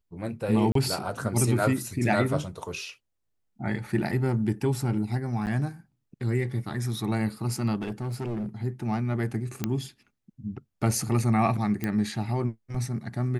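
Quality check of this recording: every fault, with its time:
0.72–0.75 s: dropout 33 ms
5.46–5.47 s: dropout 9.1 ms
7.81–8.46 s: clipped -27.5 dBFS
9.64 s: pop -12 dBFS
11.84 s: pop -15 dBFS

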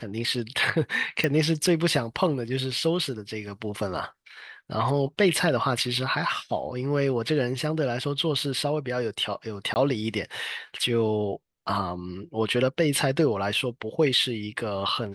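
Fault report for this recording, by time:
1.24 s: pop
9.74–9.76 s: dropout 19 ms

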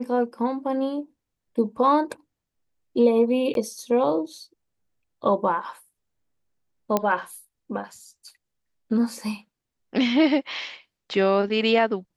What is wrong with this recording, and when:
3.54–3.55 s: dropout 12 ms
6.97 s: pop -8 dBFS

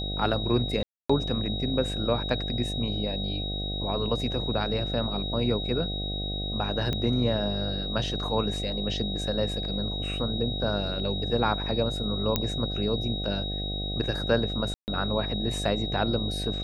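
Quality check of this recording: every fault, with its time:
buzz 50 Hz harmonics 15 -33 dBFS
whine 3.8 kHz -33 dBFS
0.83–1.09 s: dropout 265 ms
6.93 s: pop -16 dBFS
12.36 s: pop -8 dBFS
14.74–14.88 s: dropout 139 ms

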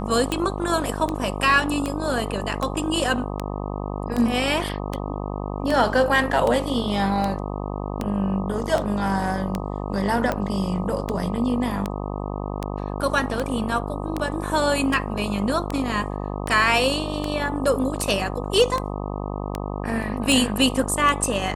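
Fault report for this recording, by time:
buzz 50 Hz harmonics 25 -29 dBFS
tick 78 rpm -11 dBFS
8.63 s: dropout 3.4 ms

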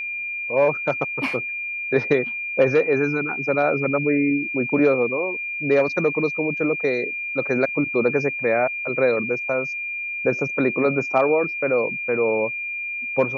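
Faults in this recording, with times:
whine 2.4 kHz -26 dBFS

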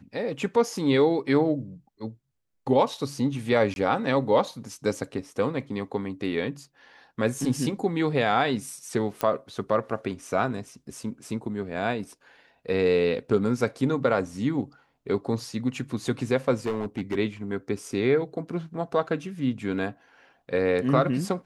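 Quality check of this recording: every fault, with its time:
3.74–3.76 s: dropout 21 ms
9.21 s: pop -12 dBFS
16.66–17.15 s: clipped -23 dBFS

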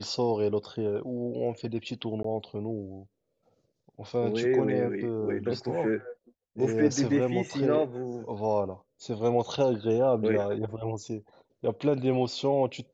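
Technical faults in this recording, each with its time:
2.23–2.24 s: dropout 14 ms

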